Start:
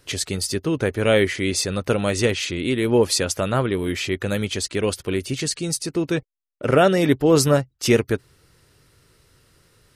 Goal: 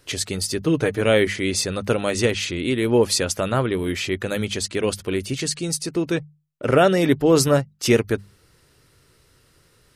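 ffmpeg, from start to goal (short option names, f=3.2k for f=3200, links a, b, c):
-filter_complex "[0:a]bandreject=f=50:t=h:w=6,bandreject=f=100:t=h:w=6,bandreject=f=150:t=h:w=6,bandreject=f=200:t=h:w=6,asettb=1/sr,asplit=3[a][b][c];[a]atrim=end=0.614[d];[b]atrim=start=0.61:end=1.01,asetpts=PTS-STARTPTS,afade=t=in:d=0.004:c=qsin,afade=t=out:st=0.396:d=0.004:c=qsin,aecho=1:1:6.6:0.61,atrim=end_sample=17640[e];[c]atrim=start=1.006[f];[d][e]acrossfade=d=0.004:c1=hsin:c2=qsin[g];[g][f]acrossfade=d=0.004:c1=qsin:c2=hsin"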